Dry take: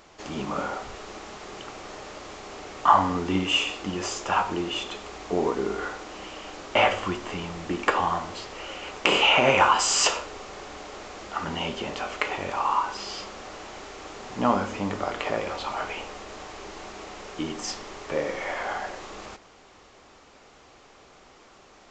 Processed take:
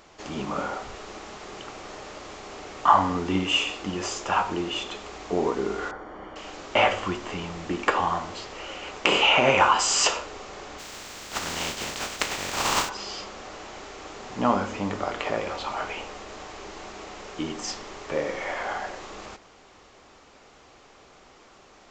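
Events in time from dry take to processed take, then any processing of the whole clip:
0:05.91–0:06.36: Savitzky-Golay smoothing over 41 samples
0:10.78–0:12.88: compressing power law on the bin magnitudes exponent 0.32

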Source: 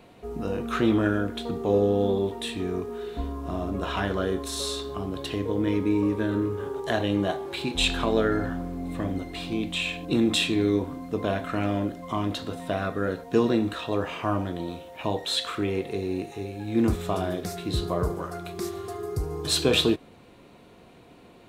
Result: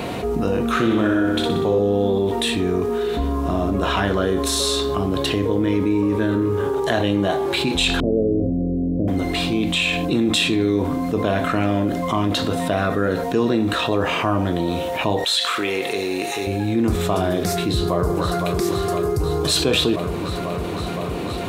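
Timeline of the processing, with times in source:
0:00.70–0:01.79: flutter between parallel walls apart 10.5 metres, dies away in 0.86 s
0:08.00–0:09.08: Butterworth low-pass 580 Hz 48 dB per octave
0:15.24–0:16.47: high-pass filter 1,200 Hz 6 dB per octave
0:17.66–0:18.58: delay throw 510 ms, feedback 75%, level −10 dB
whole clip: high-pass filter 46 Hz; envelope flattener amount 70%

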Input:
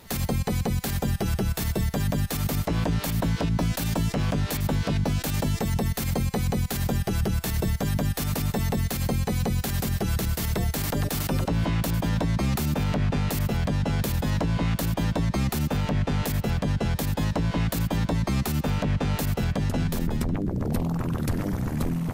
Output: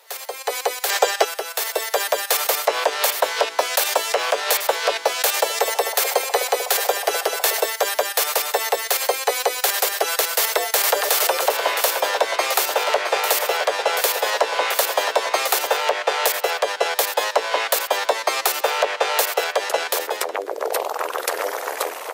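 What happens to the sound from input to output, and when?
0:00.90–0:01.25: gain on a spectral selection 330–8,500 Hz +9 dB
0:05.10–0:07.62: echo through a band-pass that steps 252 ms, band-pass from 520 Hz, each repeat 0.7 octaves, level −8 dB
0:10.23–0:15.76: single-tap delay 665 ms −8 dB
whole clip: Butterworth high-pass 450 Hz 48 dB per octave; automatic gain control gain up to 14 dB

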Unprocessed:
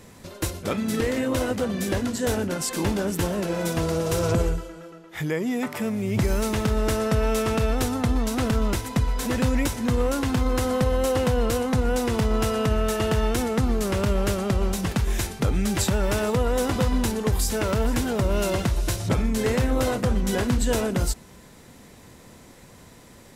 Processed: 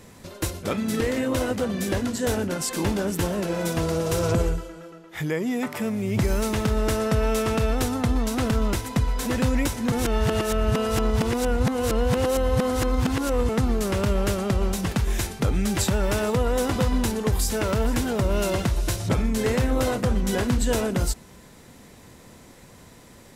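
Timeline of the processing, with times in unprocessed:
0:09.92–0:13.49: reverse

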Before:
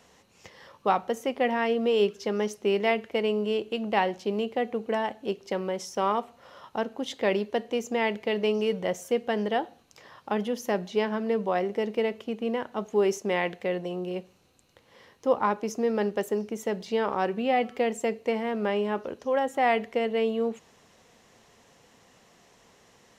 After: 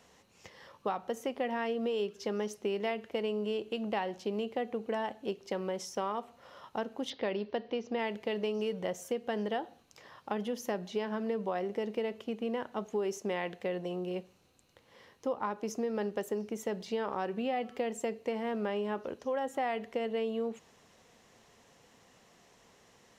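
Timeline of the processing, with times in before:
0:07.10–0:07.99: Butterworth low-pass 5,300 Hz 48 dB per octave
whole clip: dynamic equaliser 2,200 Hz, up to −4 dB, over −49 dBFS, Q 5.9; downward compressor, threshold −26 dBFS; level −3.5 dB

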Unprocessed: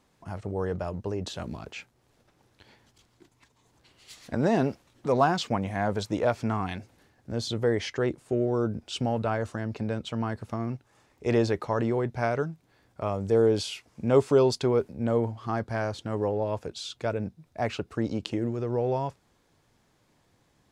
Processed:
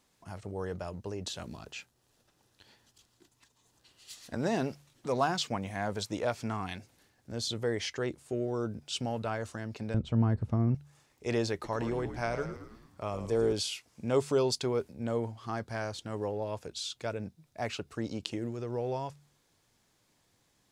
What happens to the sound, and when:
0:01.51–0:04.35: notch filter 2,200 Hz, Q 9.1
0:09.94–0:10.75: spectral tilt −4.5 dB per octave
0:11.53–0:13.53: echo with shifted repeats 109 ms, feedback 54%, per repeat −68 Hz, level −9.5 dB
whole clip: high-shelf EQ 2,700 Hz +10 dB; hum removal 72.29 Hz, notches 2; level −7 dB

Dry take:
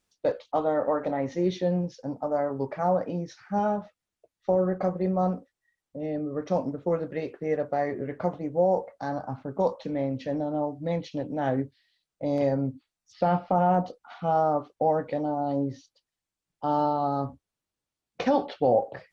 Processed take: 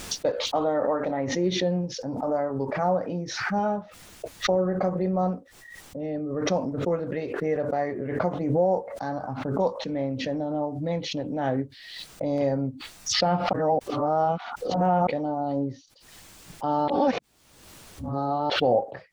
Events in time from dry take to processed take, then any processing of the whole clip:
0:13.53–0:15.07: reverse
0:16.88–0:18.50: reverse
whole clip: background raised ahead of every attack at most 45 dB per second

